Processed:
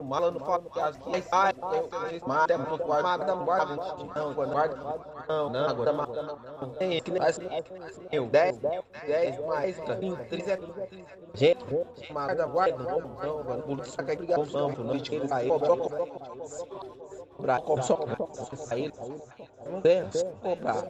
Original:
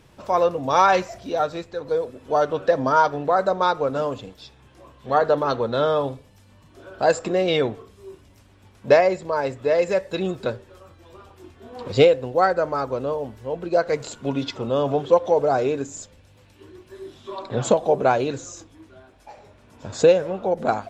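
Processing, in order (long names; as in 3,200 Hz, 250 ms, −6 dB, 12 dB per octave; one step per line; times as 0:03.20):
slices reordered back to front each 189 ms, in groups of 4
noise gate −42 dBFS, range −9 dB
on a send: delay that swaps between a low-pass and a high-pass 299 ms, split 940 Hz, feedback 66%, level −7.5 dB
on the sum: one half of a high-frequency compander decoder only
level −7 dB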